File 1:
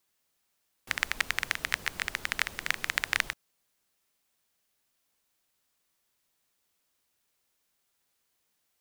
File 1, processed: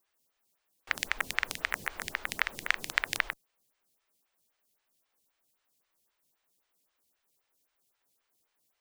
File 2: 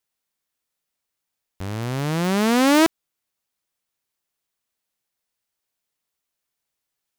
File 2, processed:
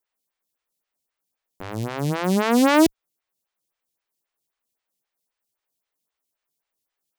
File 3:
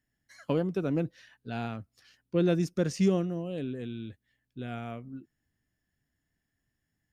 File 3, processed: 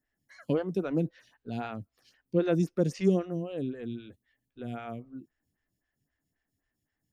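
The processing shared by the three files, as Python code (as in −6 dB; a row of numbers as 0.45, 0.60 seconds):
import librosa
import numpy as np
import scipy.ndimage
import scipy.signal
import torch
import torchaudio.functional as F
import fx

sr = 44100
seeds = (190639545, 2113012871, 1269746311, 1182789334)

y = fx.stagger_phaser(x, sr, hz=3.8)
y = y * 10.0 ** (2.5 / 20.0)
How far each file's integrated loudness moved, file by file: −1.5, 0.0, 0.0 LU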